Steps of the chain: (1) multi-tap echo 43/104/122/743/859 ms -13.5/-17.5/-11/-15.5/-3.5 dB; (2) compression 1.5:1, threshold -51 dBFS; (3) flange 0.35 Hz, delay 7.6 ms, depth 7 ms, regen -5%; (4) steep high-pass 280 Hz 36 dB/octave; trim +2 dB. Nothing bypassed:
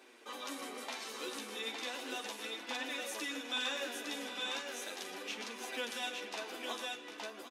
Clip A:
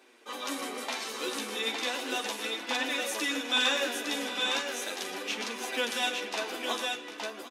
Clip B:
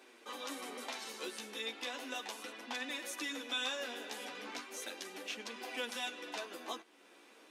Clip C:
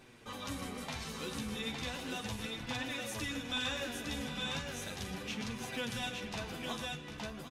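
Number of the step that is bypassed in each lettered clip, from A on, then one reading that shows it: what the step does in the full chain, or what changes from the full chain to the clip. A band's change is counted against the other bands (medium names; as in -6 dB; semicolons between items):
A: 2, mean gain reduction 7.5 dB; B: 1, momentary loudness spread change +2 LU; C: 4, 250 Hz band +6.5 dB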